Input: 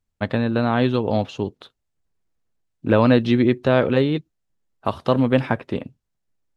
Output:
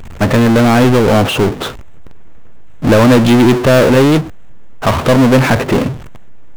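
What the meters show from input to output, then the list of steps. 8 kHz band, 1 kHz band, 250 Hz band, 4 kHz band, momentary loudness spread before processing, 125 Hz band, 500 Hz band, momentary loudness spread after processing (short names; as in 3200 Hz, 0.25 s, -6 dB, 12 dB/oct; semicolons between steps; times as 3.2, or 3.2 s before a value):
n/a, +10.5 dB, +10.0 dB, +13.0 dB, 13 LU, +11.0 dB, +9.5 dB, 12 LU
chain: Wiener smoothing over 9 samples; power-law curve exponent 0.35; gain +1.5 dB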